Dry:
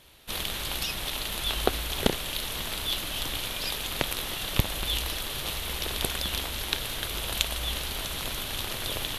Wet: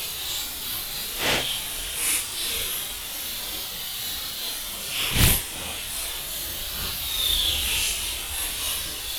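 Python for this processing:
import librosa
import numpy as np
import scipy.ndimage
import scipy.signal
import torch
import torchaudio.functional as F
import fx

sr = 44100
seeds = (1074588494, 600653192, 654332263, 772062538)

y = fx.peak_eq(x, sr, hz=11000.0, db=12.5, octaves=2.8)
y = np.sign(y) * np.maximum(np.abs(y) - 10.0 ** (-29.5 / 20.0), 0.0)
y = fx.wow_flutter(y, sr, seeds[0], rate_hz=2.1, depth_cents=140.0)
y = fx.paulstretch(y, sr, seeds[1], factor=6.7, window_s=0.05, from_s=3.81)
y = fx.doppler_dist(y, sr, depth_ms=0.65)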